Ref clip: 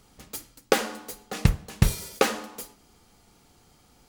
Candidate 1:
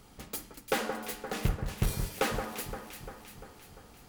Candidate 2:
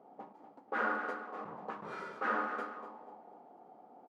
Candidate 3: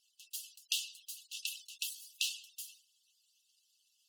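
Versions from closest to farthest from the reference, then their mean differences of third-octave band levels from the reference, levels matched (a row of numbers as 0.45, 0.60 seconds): 1, 2, 3; 7.5, 14.5, 22.0 decibels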